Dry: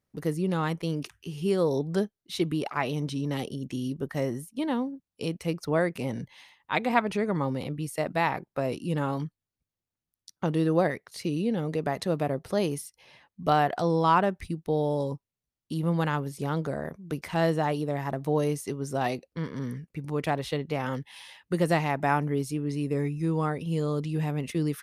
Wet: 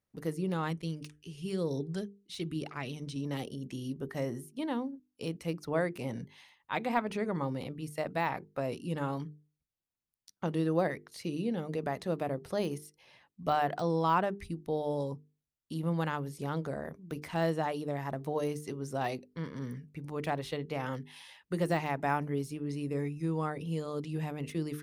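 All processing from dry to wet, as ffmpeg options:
-filter_complex "[0:a]asettb=1/sr,asplit=3[s0][s1][s2];[s0]atrim=end=0.714[s3];[s1]atrim=start=0.71:end=3.16,asetpts=PTS-STARTPTS,afade=t=in:d=0.004:c=qsin,afade=t=out:st=2.446:d=0.004:c=qsin,equalizer=f=820:t=o:w=1.9:g=-10,aphaser=in_gain=1:out_gain=1:delay=2.4:decay=0.26:speed=1:type=sinusoidal,lowpass=f=11000:w=0.5412,lowpass=f=11000:w=1.3066[s4];[s2]atrim=start=3.156[s5];[s3][s4]acrossfade=d=0.004:c1=hsin:c2=qsin[s6];[s6][s5]acrossfade=d=0.004:c1=qsin:c2=hsin,deesser=0.85,bandreject=f=50:t=h:w=6,bandreject=f=100:t=h:w=6,bandreject=f=150:t=h:w=6,bandreject=f=200:t=h:w=6,bandreject=f=250:t=h:w=6,bandreject=f=300:t=h:w=6,bandreject=f=350:t=h:w=6,bandreject=f=400:t=h:w=6,bandreject=f=450:t=h:w=6,volume=0.562"

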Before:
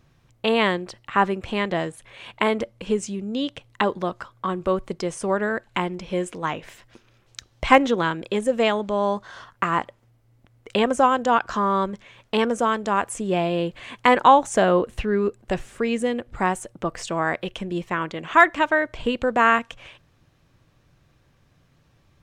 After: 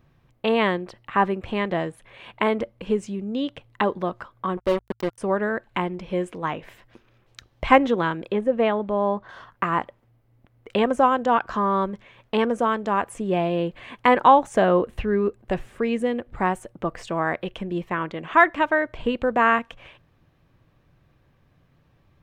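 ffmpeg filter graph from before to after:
-filter_complex "[0:a]asettb=1/sr,asplit=3[s0][s1][s2];[s0]atrim=end=4.574[s3];[s1]atrim=start=4.57:end=5.18,asetpts=PTS-STARTPTS,afade=t=in:d=0.004:c=qsin,afade=t=out:st=0.606:d=0.004:c=qsin,equalizer=f=1400:t=o:w=0.71:g=-12.5,aecho=1:1:3.3:0.42,atrim=end_sample=26901,acrusher=bits=3:mix=0:aa=0.5[s4];[s2]atrim=start=5.176[s5];[s3][s4]acrossfade=d=0.004:c1=hsin:c2=qsin[s6];[s6][s5]acrossfade=d=0.004:c1=qsin:c2=hsin,asettb=1/sr,asplit=3[s7][s8][s9];[s7]atrim=end=8.324[s10];[s8]atrim=start=8.32:end=9.29,asetpts=PTS-STARTPTS,afade=t=in:d=0.004:c=qsin,afade=t=out:st=0.966:d=0.004:c=qsin,lowpass=f=3100:p=1,aemphasis=mode=reproduction:type=cd[s11];[s9]atrim=start=9.286[s12];[s10][s11]acrossfade=d=0.004:c1=hsin:c2=qsin[s13];[s13][s12]acrossfade=d=0.004:c1=qsin:c2=hsin,equalizer=f=7100:w=0.65:g=-11.5,bandreject=f=1400:w=27,bandreject=f=56.59:t=h:w=4,bandreject=f=113.18:t=h:w=4"

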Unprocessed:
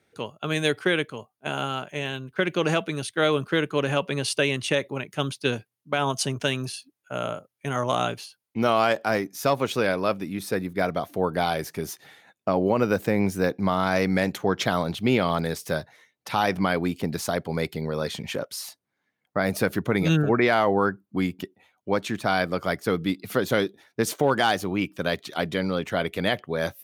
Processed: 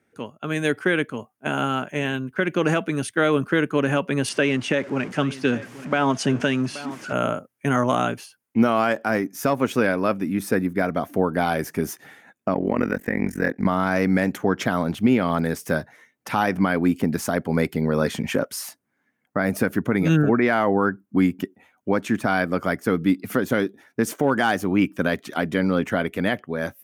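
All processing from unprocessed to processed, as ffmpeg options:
-filter_complex "[0:a]asettb=1/sr,asplit=3[s0][s1][s2];[s0]atrim=end=4.294[s3];[s1]atrim=start=4.29:end=7.13,asetpts=PTS-STARTPTS,afade=t=in:d=0.004:c=qsin,afade=t=out:st=2.836:d=0.004:c=qsin,aeval=exprs='val(0)+0.5*0.0158*sgn(val(0))':c=same,highpass=120,lowpass=5600,aecho=1:1:828:0.126,atrim=end_sample=125244[s4];[s2]atrim=start=7.126[s5];[s3][s4]acrossfade=d=0.004:c1=hsin:c2=qsin[s6];[s6][s5]acrossfade=d=0.004:c1=qsin:c2=hsin,asettb=1/sr,asplit=3[s7][s8][s9];[s7]atrim=end=12.544[s10];[s8]atrim=start=12.54:end=13.66,asetpts=PTS-STARTPTS,afade=t=in:d=0.004:c=qsin,afade=t=out:st=1.116:d=0.004:c=qsin,equalizer=f=1900:t=o:w=0.34:g=14,tremolo=f=44:d=1[s11];[s9]atrim=start=13.656[s12];[s10][s11]acrossfade=d=0.004:c1=hsin:c2=qsin[s13];[s13][s12]acrossfade=d=0.004:c1=qsin:c2=hsin,equalizer=f=250:t=o:w=0.67:g=8,equalizer=f=1600:t=o:w=0.67:g=4,equalizer=f=4000:t=o:w=0.67:g=-9,dynaudnorm=f=160:g=11:m=3.76,alimiter=limit=0.501:level=0:latency=1:release=363,volume=0.75"

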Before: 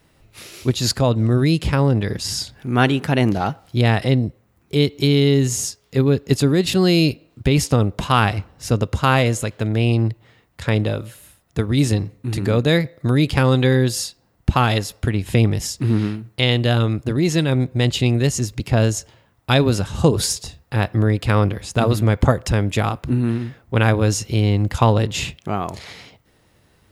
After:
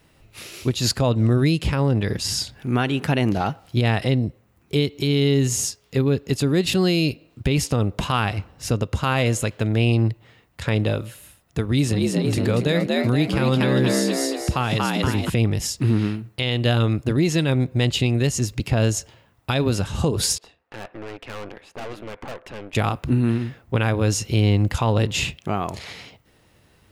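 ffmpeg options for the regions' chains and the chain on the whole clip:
-filter_complex "[0:a]asettb=1/sr,asplit=3[s0][s1][s2];[s0]atrim=end=11.654[s3];[s1]atrim=start=11.65:end=15.3,asetpts=PTS-STARTPTS,afade=t=in:d=0.004:c=qsin,afade=t=out:st=3.646:d=0.004:c=qsin,highpass=f=50:w=0.5412,highpass=f=50:w=1.3066,asplit=7[s4][s5][s6][s7][s8][s9][s10];[s5]adelay=235,afreqshift=71,volume=0.668[s11];[s6]adelay=470,afreqshift=142,volume=0.295[s12];[s7]adelay=705,afreqshift=213,volume=0.129[s13];[s8]adelay=940,afreqshift=284,volume=0.0569[s14];[s9]adelay=1175,afreqshift=355,volume=0.0251[s15];[s10]adelay=1410,afreqshift=426,volume=0.011[s16];[s4][s11][s12][s13][s14][s15][s16]amix=inputs=7:normalize=0,atrim=end_sample=160965[s17];[s2]atrim=start=15.296[s18];[s3][s17]acrossfade=d=0.004:c1=hsin:c2=qsin[s19];[s19][s18]acrossfade=d=0.004:c1=qsin:c2=hsin,asettb=1/sr,asplit=3[s20][s21][s22];[s20]atrim=end=20.384[s23];[s21]atrim=start=20.38:end=22.75,asetpts=PTS-STARTPTS,afade=t=in:d=0.004:c=qsin,afade=t=out:st=2.366:d=0.004:c=qsin,aeval=exprs='if(lt(val(0),0),0.708*val(0),val(0))':c=same,acrossover=split=300 3100:gain=0.0891 1 0.112[s24][s25][s26];[s24][s25][s26]amix=inputs=3:normalize=0,aeval=exprs='(tanh(35.5*val(0)+0.8)-tanh(0.8))/35.5':c=same[s27];[s22]atrim=start=22.746[s28];[s23][s27]acrossfade=d=0.004:c1=hsin:c2=qsin[s29];[s29][s28]acrossfade=d=0.004:c1=qsin:c2=hsin,equalizer=f=2700:w=3.8:g=3,alimiter=limit=0.316:level=0:latency=1:release=220"

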